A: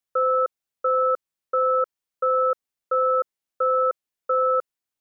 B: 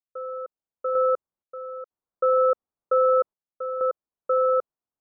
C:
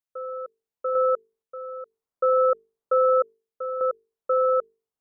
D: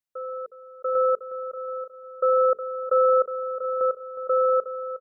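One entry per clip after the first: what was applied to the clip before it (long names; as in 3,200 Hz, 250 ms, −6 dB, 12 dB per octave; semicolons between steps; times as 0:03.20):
low-pass filter 1,200 Hz 24 dB per octave; sample-and-hold tremolo 2.1 Hz, depth 85%; level +3.5 dB
mains-hum notches 50/100/150/200/250/300/350/400/450 Hz
repeating echo 363 ms, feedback 45%, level −12 dB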